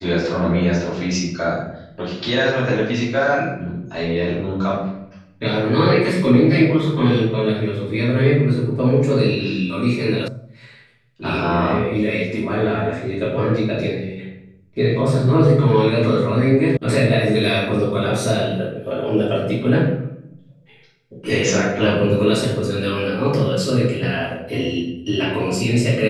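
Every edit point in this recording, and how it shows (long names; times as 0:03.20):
0:10.28: cut off before it has died away
0:16.77: cut off before it has died away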